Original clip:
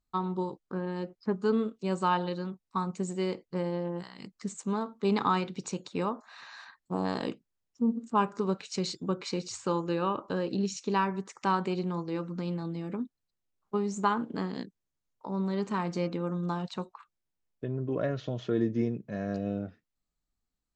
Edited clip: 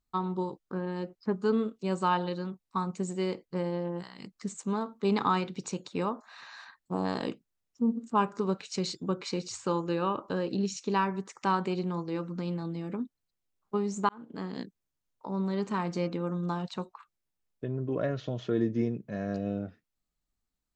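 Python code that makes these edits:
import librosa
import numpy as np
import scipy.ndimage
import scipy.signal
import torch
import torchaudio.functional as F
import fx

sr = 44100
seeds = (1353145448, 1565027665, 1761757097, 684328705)

y = fx.edit(x, sr, fx.fade_in_span(start_s=14.09, length_s=0.53), tone=tone)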